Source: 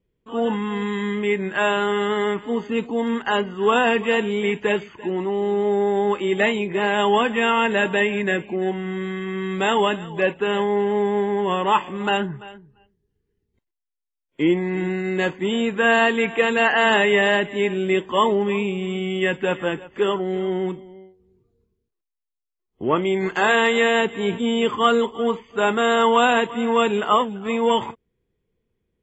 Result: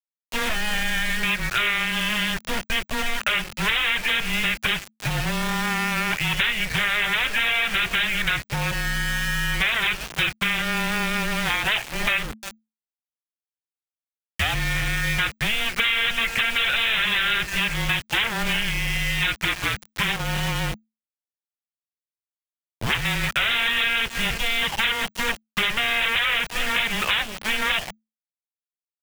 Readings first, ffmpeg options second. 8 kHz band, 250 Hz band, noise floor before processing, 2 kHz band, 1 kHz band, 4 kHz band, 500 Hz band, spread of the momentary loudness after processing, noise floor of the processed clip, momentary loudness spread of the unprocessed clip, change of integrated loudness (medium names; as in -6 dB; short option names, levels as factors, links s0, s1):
no reading, -9.0 dB, -81 dBFS, +2.5 dB, -7.5 dB, +6.0 dB, -17.0 dB, 6 LU, under -85 dBFS, 8 LU, -1.5 dB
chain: -af "aresample=8000,aeval=exprs='0.106*(abs(mod(val(0)/0.106+3,4)-2)-1)':c=same,aresample=44100,highpass=80,equalizer=f=490:t=o:w=0.4:g=-12.5,acontrast=34,highshelf=f=1600:t=q:w=1.5:g=8.5,aeval=exprs='val(0)*gte(abs(val(0)),0.0794)':c=same,acompressor=threshold=0.1:ratio=5,afreqshift=-220"